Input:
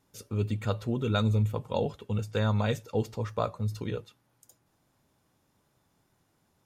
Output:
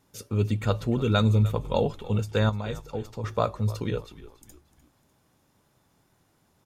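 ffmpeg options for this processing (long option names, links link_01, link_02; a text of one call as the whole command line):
ffmpeg -i in.wav -filter_complex "[0:a]asettb=1/sr,asplit=3[link_01][link_02][link_03];[link_01]atrim=end=2.494[link_04];[link_02]atrim=start=2.49:end=3.24,asetpts=PTS-STARTPTS,afade=type=in:duration=0.004:curve=qsin,afade=type=out:start_time=0.746:duration=0.004:curve=qsin,acompressor=threshold=-38dB:ratio=2.5[link_05];[link_03]atrim=start=3.236[link_06];[link_04][link_05]acrossfade=duration=0.004:curve1=hsin:curve2=qsin[link_07];[link_07][link_06]acrossfade=duration=0.004:curve1=qsin:curve2=hsin,asplit=2[link_08][link_09];[link_09]asplit=3[link_10][link_11][link_12];[link_10]adelay=300,afreqshift=-60,volume=-17.5dB[link_13];[link_11]adelay=600,afreqshift=-120,volume=-25.5dB[link_14];[link_12]adelay=900,afreqshift=-180,volume=-33.4dB[link_15];[link_13][link_14][link_15]amix=inputs=3:normalize=0[link_16];[link_08][link_16]amix=inputs=2:normalize=0,volume=4.5dB" out.wav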